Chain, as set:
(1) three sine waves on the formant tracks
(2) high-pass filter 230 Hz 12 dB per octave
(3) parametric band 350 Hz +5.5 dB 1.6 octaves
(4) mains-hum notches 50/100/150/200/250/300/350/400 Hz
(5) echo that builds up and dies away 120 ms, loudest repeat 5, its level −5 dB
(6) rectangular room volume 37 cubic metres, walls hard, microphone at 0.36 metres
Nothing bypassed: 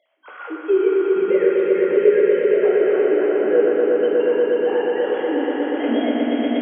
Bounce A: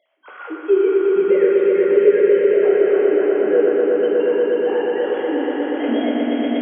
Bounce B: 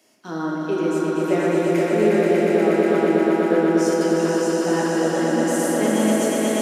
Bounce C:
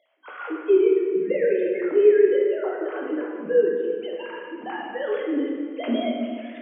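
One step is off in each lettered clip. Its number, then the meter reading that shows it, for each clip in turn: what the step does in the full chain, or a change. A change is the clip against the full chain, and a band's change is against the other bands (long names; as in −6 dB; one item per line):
4, 500 Hz band +1.5 dB
1, 500 Hz band −6.5 dB
5, echo-to-direct ratio 10.0 dB to 2.5 dB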